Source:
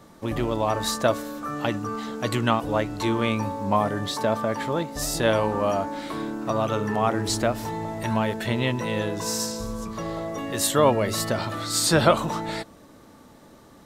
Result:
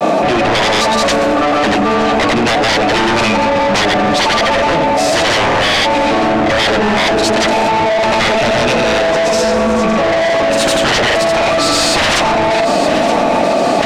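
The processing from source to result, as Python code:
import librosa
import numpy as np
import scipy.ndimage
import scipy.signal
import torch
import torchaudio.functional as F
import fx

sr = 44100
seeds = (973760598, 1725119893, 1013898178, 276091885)

p1 = scipy.signal.sosfilt(scipy.signal.butter(4, 170.0, 'highpass', fs=sr, output='sos'), x)
p2 = fx.notch(p1, sr, hz=1000.0, q=18.0)
p3 = fx.small_body(p2, sr, hz=(690.0, 2500.0), ring_ms=20, db=17)
p4 = fx.fold_sine(p3, sr, drive_db=16, ceiling_db=-3.0)
p5 = fx.granulator(p4, sr, seeds[0], grain_ms=100.0, per_s=23.0, spray_ms=100.0, spread_st=0)
p6 = 10.0 ** (-16.5 / 20.0) * np.tanh(p5 / 10.0 ** (-16.5 / 20.0))
p7 = fx.air_absorb(p6, sr, metres=80.0)
p8 = p7 + fx.echo_feedback(p7, sr, ms=921, feedback_pct=53, wet_db=-17, dry=0)
p9 = fx.env_flatten(p8, sr, amount_pct=100)
y = p9 * 10.0 ** (4.5 / 20.0)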